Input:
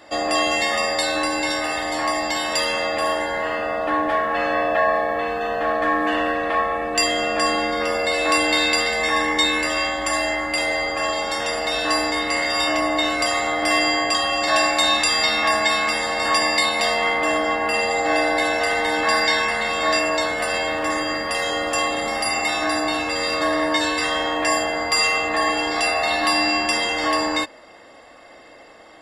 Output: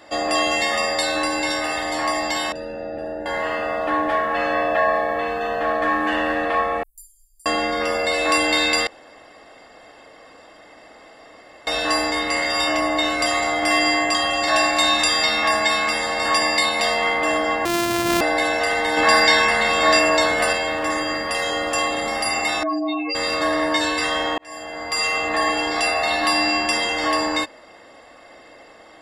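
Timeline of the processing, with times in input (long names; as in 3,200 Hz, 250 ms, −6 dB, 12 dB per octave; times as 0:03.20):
0:02.52–0:03.26: moving average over 41 samples
0:05.39–0:05.97: delay throw 480 ms, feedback 50%, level −7.5 dB
0:06.83–0:07.46: inverse Chebyshev band-stop filter 140–2,600 Hz, stop band 80 dB
0:08.87–0:11.67: fill with room tone
0:13.03–0:15.24: single-tap delay 204 ms −12 dB
0:17.65–0:18.21: samples sorted by size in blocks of 128 samples
0:18.97–0:20.53: clip gain +4 dB
0:22.63–0:23.15: expanding power law on the bin magnitudes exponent 3.9
0:24.38–0:25.30: fade in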